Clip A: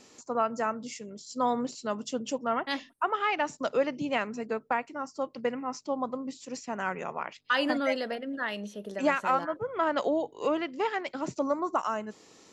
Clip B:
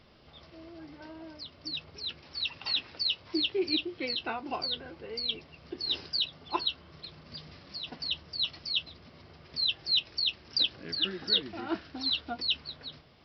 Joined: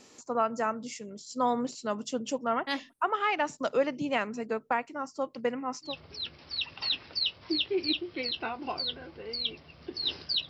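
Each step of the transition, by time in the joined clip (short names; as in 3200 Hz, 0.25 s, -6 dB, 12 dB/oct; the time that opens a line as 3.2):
clip A
5.89 switch to clip B from 1.73 s, crossfade 0.16 s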